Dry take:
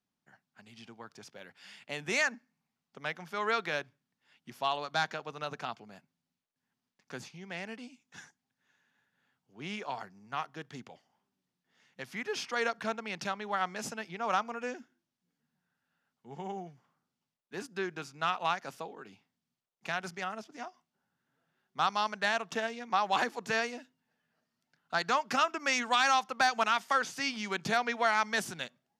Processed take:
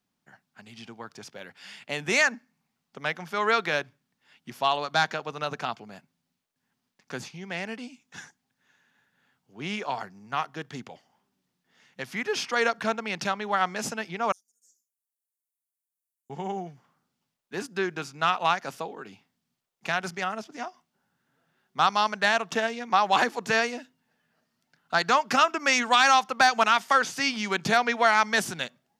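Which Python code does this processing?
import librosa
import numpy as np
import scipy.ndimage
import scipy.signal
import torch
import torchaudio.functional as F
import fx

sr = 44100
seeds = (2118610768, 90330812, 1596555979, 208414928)

y = fx.cheby2_highpass(x, sr, hz=2800.0, order=4, stop_db=60, at=(14.32, 16.3))
y = F.gain(torch.from_numpy(y), 7.0).numpy()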